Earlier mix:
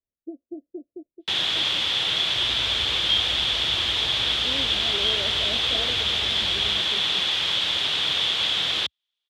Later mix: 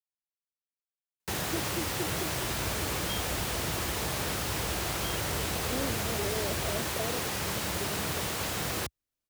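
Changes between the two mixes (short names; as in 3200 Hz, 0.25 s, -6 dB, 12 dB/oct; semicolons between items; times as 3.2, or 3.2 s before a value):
speech: entry +1.25 s; first sound: add tilt -2.5 dB/oct; master: remove synth low-pass 3400 Hz, resonance Q 9.5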